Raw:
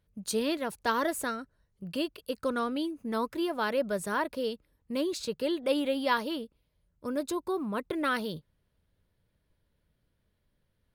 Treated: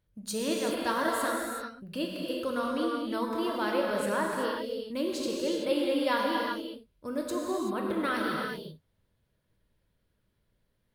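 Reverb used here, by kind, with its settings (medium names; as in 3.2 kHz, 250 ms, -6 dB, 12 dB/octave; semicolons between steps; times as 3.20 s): gated-style reverb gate 410 ms flat, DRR -2 dB; trim -3 dB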